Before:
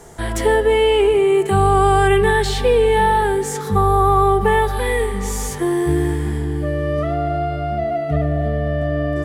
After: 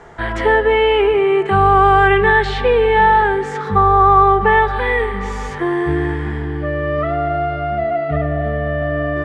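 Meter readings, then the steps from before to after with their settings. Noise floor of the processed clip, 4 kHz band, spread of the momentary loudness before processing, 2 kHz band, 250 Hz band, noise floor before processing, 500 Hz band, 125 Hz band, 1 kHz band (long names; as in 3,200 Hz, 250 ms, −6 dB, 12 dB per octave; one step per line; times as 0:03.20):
−25 dBFS, 0.0 dB, 8 LU, +6.5 dB, −0.5 dB, −25 dBFS, +0.5 dB, −1.5 dB, +4.5 dB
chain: low-pass filter 3,300 Hz 12 dB per octave
parametric band 1,500 Hz +9 dB 2.1 octaves
level −1.5 dB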